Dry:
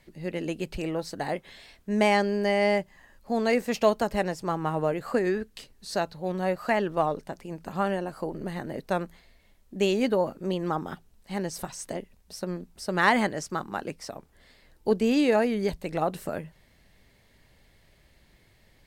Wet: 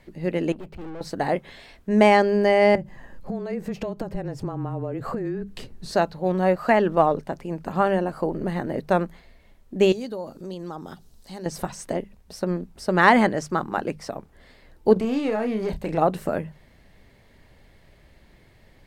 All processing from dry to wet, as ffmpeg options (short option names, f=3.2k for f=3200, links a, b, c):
-filter_complex "[0:a]asettb=1/sr,asplit=3[a][b][c];[a]atrim=end=0.524[d];[b]atrim=start=0.52:end=1.01,asetpts=PTS-STARTPTS,afade=t=in:d=0.004:c=qsin,afade=t=out:st=0.486:d=0.004:c=qsin,highpass=42,aeval=exprs='(tanh(126*val(0)+0.65)-tanh(0.65))/126':c=same,equalizer=f=8.1k:t=o:w=2.7:g=-10.5[e];[c]atrim=start=1.006[f];[d][e]acrossfade=d=0.004:c1=hsin:c2=qsin[g];[g][f]acrossfade=d=0.004:c1=qsin:c2=hsin,asettb=1/sr,asplit=3[h][i][j];[h]atrim=end=2.754[k];[i]atrim=start=2.75:end=5.92,asetpts=PTS-STARTPTS,afade=t=in:d=0.004:c=qsin,afade=t=out:st=3.166:d=0.004:c=qsin,lowshelf=f=460:g=11,acompressor=threshold=-32dB:ratio=12:attack=3.2:release=140:knee=1:detection=peak,afreqshift=-22[l];[j]atrim=start=5.916[m];[k][l]acrossfade=d=0.004:c1=hsin:c2=qsin[n];[n][m]acrossfade=d=0.004:c1=qsin:c2=hsin,asettb=1/sr,asplit=3[o][p][q];[o]atrim=end=9.924[r];[p]atrim=start=9.92:end=11.46,asetpts=PTS-STARTPTS,afade=t=in:d=0.004:c=qsin,afade=t=out:st=1.536:d=0.004:c=qsin,highshelf=f=3.2k:t=q:w=1.5:g=9.5,acompressor=threshold=-48dB:ratio=2:attack=3.2:release=140:knee=1:detection=peak[s];[q]atrim=start=11.456[t];[r][s]acrossfade=d=0.004:c1=hsin:c2=qsin[u];[u][t]acrossfade=d=0.004:c1=qsin:c2=hsin,asettb=1/sr,asplit=3[v][w][x];[v]atrim=end=14.934[y];[w]atrim=start=14.93:end=15.98,asetpts=PTS-STARTPTS,afade=t=in:d=0.004:c=qsin,afade=t=out:st=1.046:d=0.004:c=qsin,acompressor=threshold=-29dB:ratio=4:attack=3.2:release=140:knee=1:detection=peak,aeval=exprs='clip(val(0),-1,0.0376)':c=same,asplit=2[z][aa];[aa]adelay=32,volume=-8dB[ab];[z][ab]amix=inputs=2:normalize=0,atrim=end_sample=46305[ac];[x]atrim=start=15.976[ad];[y][ac]acrossfade=d=0.004:c1=hsin:c2=qsin[ae];[ae][ad]acrossfade=d=0.004:c1=qsin:c2=hsin,highshelf=f=2.6k:g=-9,bandreject=f=50:t=h:w=6,bandreject=f=100:t=h:w=6,bandreject=f=150:t=h:w=6,bandreject=f=200:t=h:w=6,volume=7.5dB"